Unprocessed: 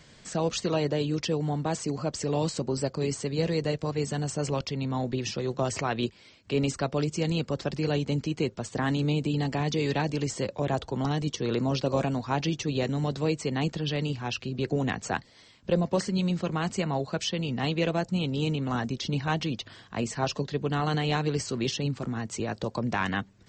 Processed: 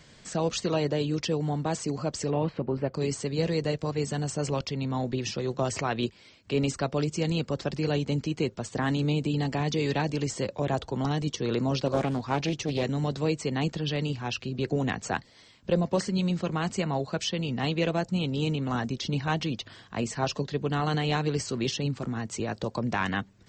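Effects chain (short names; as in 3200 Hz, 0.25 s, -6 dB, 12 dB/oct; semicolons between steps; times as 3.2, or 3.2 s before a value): 2.3–2.94 LPF 2700 Hz 24 dB/oct; 11.87–12.83 Doppler distortion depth 0.36 ms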